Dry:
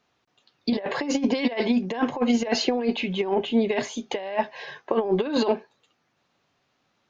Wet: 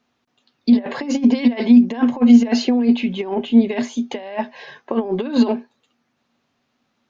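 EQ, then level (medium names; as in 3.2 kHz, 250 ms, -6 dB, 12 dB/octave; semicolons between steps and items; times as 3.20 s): peaking EQ 240 Hz +14 dB 0.21 oct; 0.0 dB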